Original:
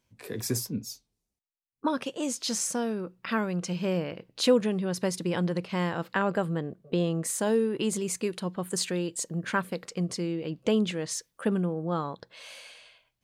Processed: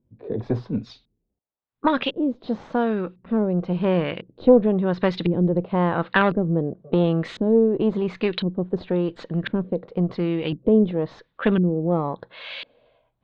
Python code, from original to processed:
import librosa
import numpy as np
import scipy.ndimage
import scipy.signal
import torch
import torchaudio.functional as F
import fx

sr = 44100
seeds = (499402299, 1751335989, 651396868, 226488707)

y = fx.diode_clip(x, sr, knee_db=-23.0)
y = fx.filter_lfo_lowpass(y, sr, shape='saw_up', hz=0.95, low_hz=290.0, high_hz=2700.0, q=1.2)
y = fx.lowpass_res(y, sr, hz=3800.0, q=5.0)
y = F.gain(torch.from_numpy(y), 8.0).numpy()